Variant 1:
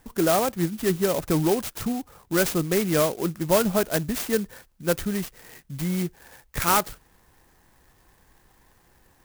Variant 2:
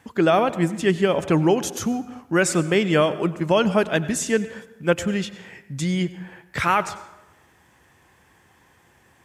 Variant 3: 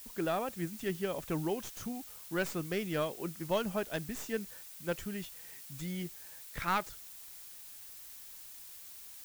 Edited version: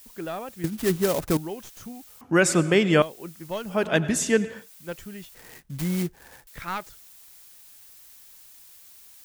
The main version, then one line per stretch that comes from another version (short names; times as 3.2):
3
0.64–1.37 from 1
2.21–3.02 from 2
3.79–4.59 from 2, crossfade 0.24 s
5.35–6.47 from 1